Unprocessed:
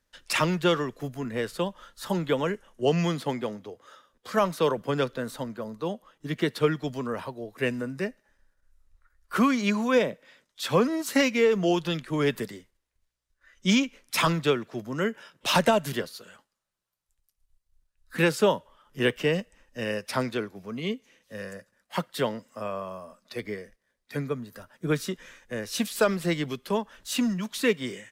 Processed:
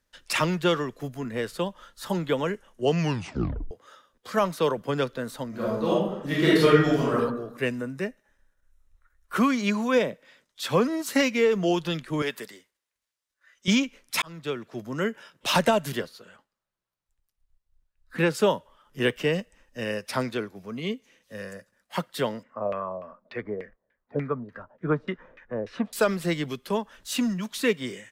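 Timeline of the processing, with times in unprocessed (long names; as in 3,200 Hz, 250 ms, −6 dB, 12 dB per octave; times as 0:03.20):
0:02.99: tape stop 0.72 s
0:05.49–0:07.13: thrown reverb, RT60 0.88 s, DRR −8 dB
0:07.75–0:09.37: notch filter 4,700 Hz, Q 6.7
0:12.22–0:13.68: high-pass filter 750 Hz 6 dB per octave
0:14.22–0:14.86: fade in
0:16.06–0:18.35: high-shelf EQ 4,300 Hz −10.5 dB
0:22.43–0:25.93: auto-filter low-pass saw down 3.4 Hz 500–2,400 Hz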